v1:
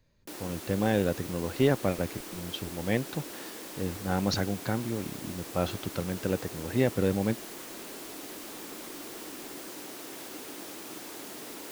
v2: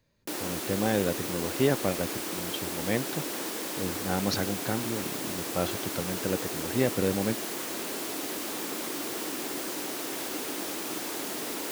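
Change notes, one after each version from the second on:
background +8.0 dB; master: add low shelf 65 Hz -11.5 dB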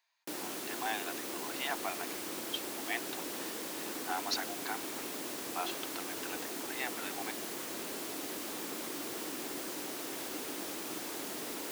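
speech: add rippled Chebyshev high-pass 680 Hz, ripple 3 dB; background -6.0 dB

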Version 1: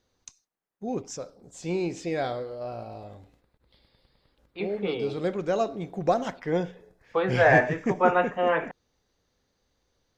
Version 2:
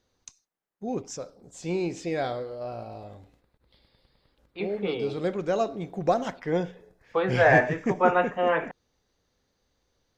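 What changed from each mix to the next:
none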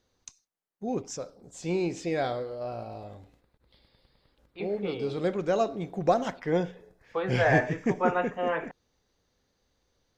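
second voice -5.0 dB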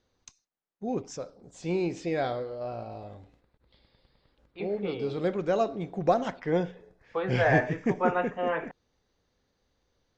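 master: add air absorption 68 m

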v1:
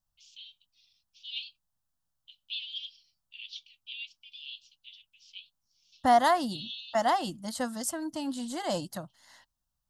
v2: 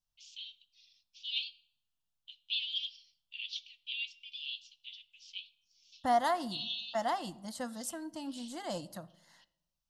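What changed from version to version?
second voice -9.5 dB; reverb: on, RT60 0.90 s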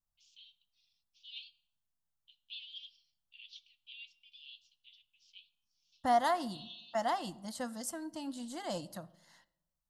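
first voice -12.0 dB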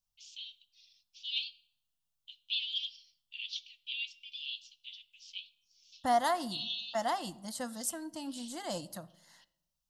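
first voice +10.5 dB; master: add high shelf 5200 Hz +7 dB

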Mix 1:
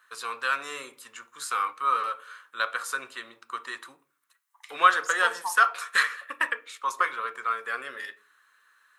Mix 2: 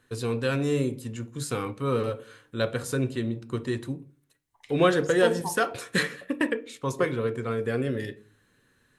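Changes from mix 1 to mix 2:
second voice: add high shelf 6800 Hz -11 dB; master: remove resonant high-pass 1200 Hz, resonance Q 3.9

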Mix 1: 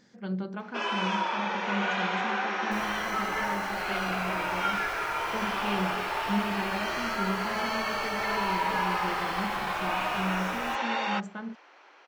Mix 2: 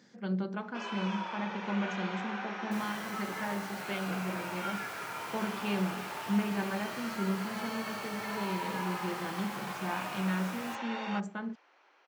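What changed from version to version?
first sound -9.5 dB; master: add HPF 120 Hz 24 dB/oct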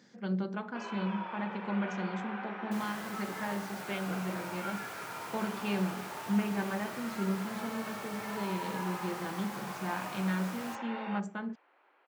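first sound: add air absorption 370 m

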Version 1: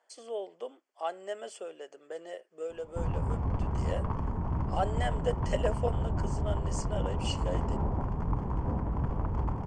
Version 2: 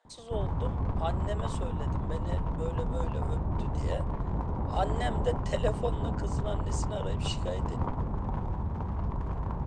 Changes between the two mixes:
background: entry -2.65 s; master: remove Butterworth band-stop 3800 Hz, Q 4.9

